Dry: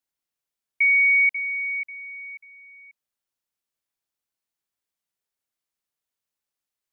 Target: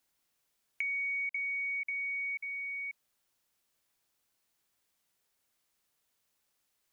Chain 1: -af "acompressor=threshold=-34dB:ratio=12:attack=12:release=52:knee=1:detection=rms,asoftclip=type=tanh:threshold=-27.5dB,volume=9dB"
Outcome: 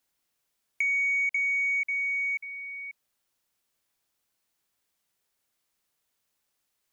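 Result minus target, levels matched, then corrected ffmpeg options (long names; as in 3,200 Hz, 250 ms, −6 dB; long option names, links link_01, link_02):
downward compressor: peak gain reduction −8.5 dB
-af "acompressor=threshold=-43.5dB:ratio=12:attack=12:release=52:knee=1:detection=rms,asoftclip=type=tanh:threshold=-27.5dB,volume=9dB"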